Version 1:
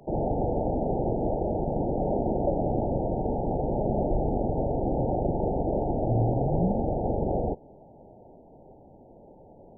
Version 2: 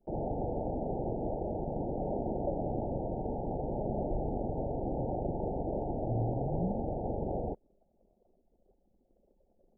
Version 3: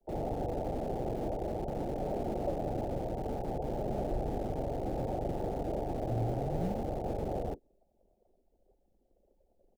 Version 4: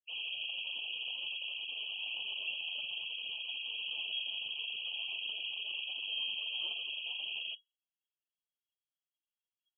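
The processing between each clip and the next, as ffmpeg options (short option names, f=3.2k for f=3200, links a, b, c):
-af "anlmdn=0.251,volume=-7.5dB"
-filter_complex "[0:a]acrossover=split=170|250|330[a][b][c][d];[b]acrusher=bits=5:dc=4:mix=0:aa=0.000001[e];[c]asplit=2[f][g];[g]adelay=41,volume=-6dB[h];[f][h]amix=inputs=2:normalize=0[i];[a][e][i][d]amix=inputs=4:normalize=0"
-af "aexciter=amount=10:drive=7.6:freq=2.5k,lowpass=f=2.8k:t=q:w=0.5098,lowpass=f=2.8k:t=q:w=0.6013,lowpass=f=2.8k:t=q:w=0.9,lowpass=f=2.8k:t=q:w=2.563,afreqshift=-3300,afftdn=nr=28:nf=-44,volume=-5.5dB"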